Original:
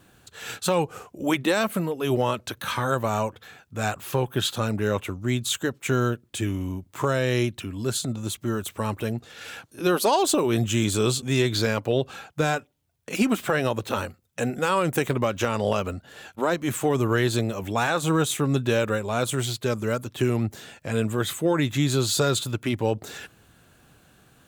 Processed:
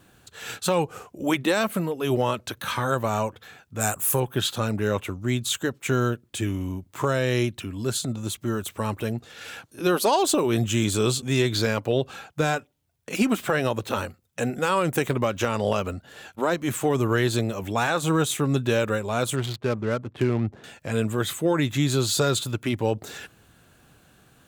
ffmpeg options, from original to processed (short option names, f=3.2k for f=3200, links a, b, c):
-filter_complex "[0:a]asettb=1/sr,asplit=3[a][b][c];[a]atrim=end=3.804[d];[b]atrim=start=3.8:end=4.2,asetpts=PTS-STARTPTS,afade=t=in:d=0.004:c=qsin,afade=t=out:st=0.396:d=0.004:c=qsin,highshelf=f=6.3k:t=q:w=1.5:g=14[e];[c]atrim=start=4.196[f];[d][e]acrossfade=d=0.004:c1=hsin:c2=qsin[g];[g][f]acrossfade=d=0.004:c1=qsin:c2=hsin,asettb=1/sr,asplit=3[h][i][j];[h]atrim=end=19.364[k];[i]atrim=start=19.36:end=20.64,asetpts=PTS-STARTPTS,afade=t=in:d=0.004:c=qsin,afade=t=out:st=1.276:d=0.004:c=qsin,adynamicsmooth=sensitivity=5:basefreq=870[l];[j]atrim=start=20.636[m];[k][l]acrossfade=d=0.004:c1=hsin:c2=qsin[n];[n][m]acrossfade=d=0.004:c1=qsin:c2=hsin"